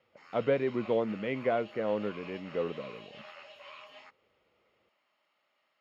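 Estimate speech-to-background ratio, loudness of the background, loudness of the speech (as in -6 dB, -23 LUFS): 16.5 dB, -49.0 LUFS, -32.5 LUFS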